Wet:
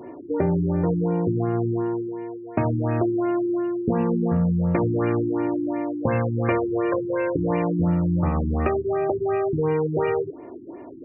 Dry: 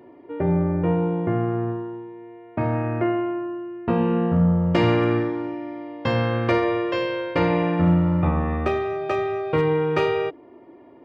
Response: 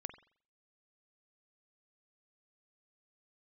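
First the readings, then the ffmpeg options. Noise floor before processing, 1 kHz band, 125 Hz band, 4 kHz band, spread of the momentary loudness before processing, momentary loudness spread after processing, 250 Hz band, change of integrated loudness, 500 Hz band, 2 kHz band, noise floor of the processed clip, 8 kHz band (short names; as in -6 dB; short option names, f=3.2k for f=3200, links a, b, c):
-48 dBFS, -2.5 dB, -1.0 dB, under -15 dB, 12 LU, 6 LU, 0.0 dB, -1.0 dB, -0.5 dB, -5.5 dB, -39 dBFS, n/a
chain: -af "acompressor=threshold=-28dB:ratio=5,afftfilt=real='re*lt(b*sr/1024,370*pow(2900/370,0.5+0.5*sin(2*PI*2.8*pts/sr)))':imag='im*lt(b*sr/1024,370*pow(2900/370,0.5+0.5*sin(2*PI*2.8*pts/sr)))':win_size=1024:overlap=0.75,volume=8.5dB"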